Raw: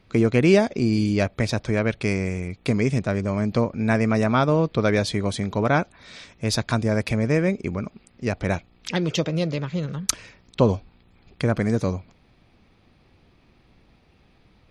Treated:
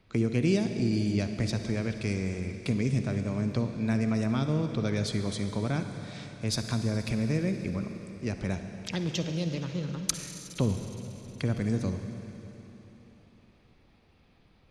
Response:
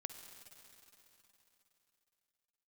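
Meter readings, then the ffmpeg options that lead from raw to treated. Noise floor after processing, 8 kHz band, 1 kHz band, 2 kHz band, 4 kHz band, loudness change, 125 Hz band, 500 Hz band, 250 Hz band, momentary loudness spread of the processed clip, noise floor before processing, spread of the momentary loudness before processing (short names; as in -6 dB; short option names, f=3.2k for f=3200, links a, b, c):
-62 dBFS, -5.0 dB, -14.0 dB, -11.0 dB, -5.5 dB, -7.5 dB, -5.0 dB, -11.0 dB, -6.0 dB, 11 LU, -59 dBFS, 10 LU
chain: -filter_complex "[0:a]acrossover=split=320|3000[a][b][c];[b]acompressor=threshold=-34dB:ratio=3[d];[a][d][c]amix=inputs=3:normalize=0[e];[1:a]atrim=start_sample=2205[f];[e][f]afir=irnorm=-1:irlink=0,volume=-1.5dB"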